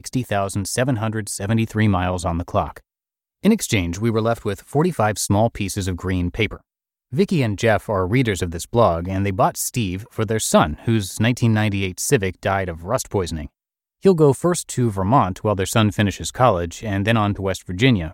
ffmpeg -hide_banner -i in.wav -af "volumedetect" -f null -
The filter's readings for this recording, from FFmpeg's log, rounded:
mean_volume: -20.0 dB
max_volume: -2.4 dB